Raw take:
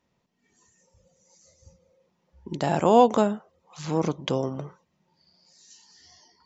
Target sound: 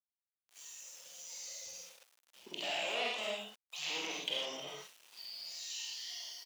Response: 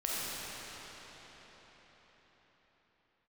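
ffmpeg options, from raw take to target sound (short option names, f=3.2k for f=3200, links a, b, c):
-filter_complex "[0:a]dynaudnorm=f=440:g=5:m=14.5dB,asettb=1/sr,asplit=3[a][b][c];[a]atrim=end=2.514[d];[b]atrim=start=2.51:end=4.66,asetpts=PTS-STARTPTS,afade=t=in:d=0.004:c=qsin,afade=t=out:st=2.146:d=0.004:c=qsin,aeval=exprs='(tanh(7.94*val(0)+0.65)-tanh(0.65))/7.94':c=same[e];[c]atrim=start=4.656[f];[d][e]acrossfade=d=0.004:c1=hsin:c2=qsin[g];[g][f]acrossfade=d=0.004:c1=qsin:c2=hsin,alimiter=level_in=0.5dB:limit=-24dB:level=0:latency=1:release=79,volume=-0.5dB,highshelf=f=2k:t=q:w=3:g=13,aecho=1:1:21|49:0.141|0.562[h];[1:a]atrim=start_sample=2205,afade=t=out:st=0.17:d=0.01,atrim=end_sample=7938[i];[h][i]afir=irnorm=-1:irlink=0,acrossover=split=2500[j][k];[k]acompressor=threshold=-39dB:ratio=4:attack=1:release=60[l];[j][l]amix=inputs=2:normalize=0,aeval=exprs='val(0)*gte(abs(val(0)),0.00473)':c=same,highpass=580,volume=-5.5dB"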